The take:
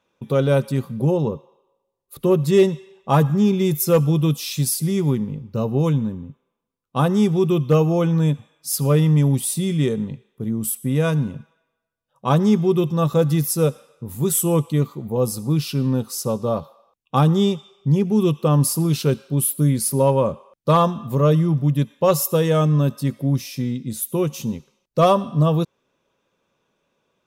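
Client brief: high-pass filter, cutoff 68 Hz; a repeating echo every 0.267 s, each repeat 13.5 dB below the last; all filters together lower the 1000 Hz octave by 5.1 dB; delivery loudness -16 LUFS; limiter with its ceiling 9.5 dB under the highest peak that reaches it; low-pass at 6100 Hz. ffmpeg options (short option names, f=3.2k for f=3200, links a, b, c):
-af "highpass=68,lowpass=6.1k,equalizer=f=1k:t=o:g=-6.5,alimiter=limit=-16.5dB:level=0:latency=1,aecho=1:1:267|534:0.211|0.0444,volume=9.5dB"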